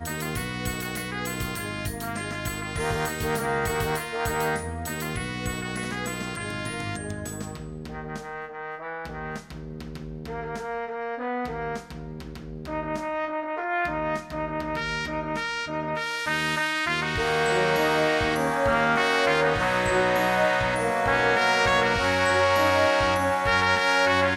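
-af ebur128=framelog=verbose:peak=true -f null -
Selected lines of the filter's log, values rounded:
Integrated loudness:
  I:         -25.4 LUFS
  Threshold: -35.7 LUFS
Loudness range:
  LRA:        12.3 LU
  Threshold: -46.0 LUFS
  LRA low:   -33.8 LUFS
  LRA high:  -21.5 LUFS
True peak:
  Peak:       -8.6 dBFS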